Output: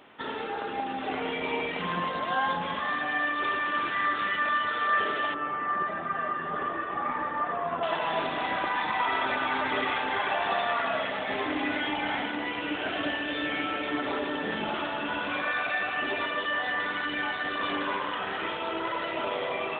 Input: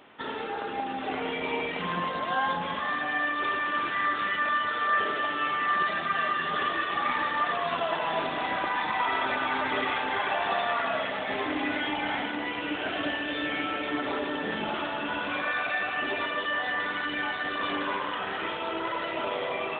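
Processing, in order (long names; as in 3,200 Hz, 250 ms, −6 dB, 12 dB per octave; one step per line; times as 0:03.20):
0:05.34–0:07.83: low-pass filter 1,300 Hz 12 dB per octave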